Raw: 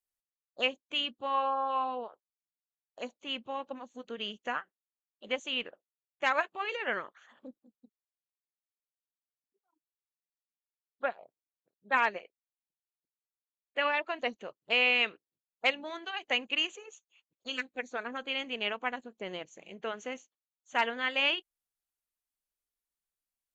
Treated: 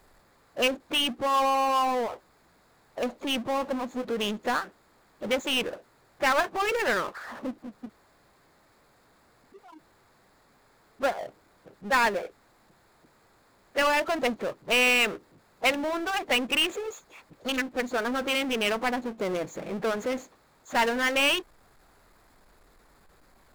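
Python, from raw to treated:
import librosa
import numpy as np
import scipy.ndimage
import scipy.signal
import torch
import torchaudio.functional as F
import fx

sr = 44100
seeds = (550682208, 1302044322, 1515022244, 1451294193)

y = fx.wiener(x, sr, points=15)
y = fx.power_curve(y, sr, exponent=0.5)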